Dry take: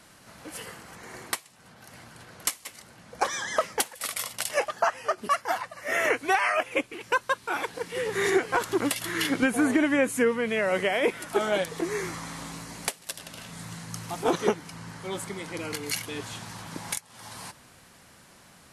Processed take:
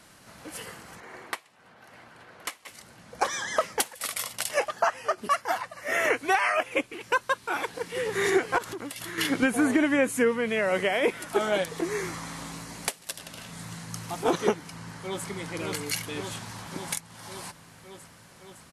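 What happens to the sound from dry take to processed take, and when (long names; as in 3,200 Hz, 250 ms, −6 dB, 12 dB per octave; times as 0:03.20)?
0:01.00–0:02.68: bass and treble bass −9 dB, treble −12 dB
0:08.58–0:09.18: downward compressor 8 to 1, threshold −33 dBFS
0:14.65–0:15.27: delay throw 560 ms, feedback 75%, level −3.5 dB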